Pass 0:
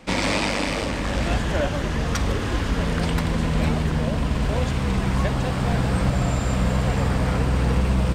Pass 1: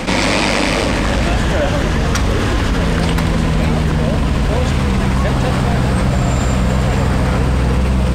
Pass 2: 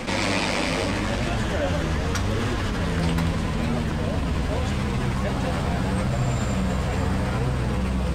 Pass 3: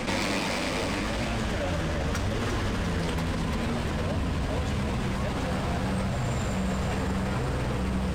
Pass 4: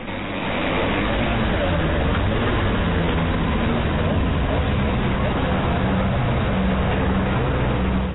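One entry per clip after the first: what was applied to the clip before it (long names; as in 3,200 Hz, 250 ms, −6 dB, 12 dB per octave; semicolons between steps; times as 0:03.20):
envelope flattener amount 70%; level +4 dB
flanger 0.8 Hz, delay 8 ms, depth 4.4 ms, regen +39%; level −5 dB
hard clipping −20 dBFS, distortion −15 dB; echo with a time of its own for lows and highs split 470 Hz, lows 104 ms, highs 345 ms, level −6 dB; brickwall limiter −21 dBFS, peak gain reduction 7 dB
stylus tracing distortion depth 0.26 ms; automatic gain control gain up to 8 dB; AAC 16 kbit/s 16,000 Hz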